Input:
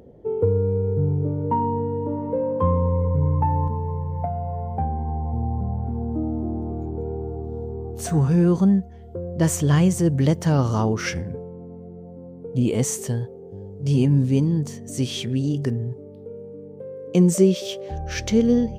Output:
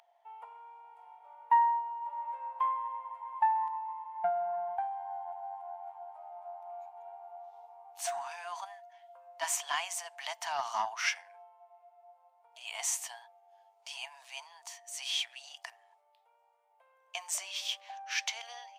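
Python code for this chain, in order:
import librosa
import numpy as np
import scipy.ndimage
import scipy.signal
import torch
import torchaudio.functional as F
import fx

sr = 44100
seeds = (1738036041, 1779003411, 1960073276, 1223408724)

y = scipy.signal.sosfilt(scipy.signal.cheby1(6, 6, 670.0, 'highpass', fs=sr, output='sos'), x)
y = fx.doppler_dist(y, sr, depth_ms=0.12)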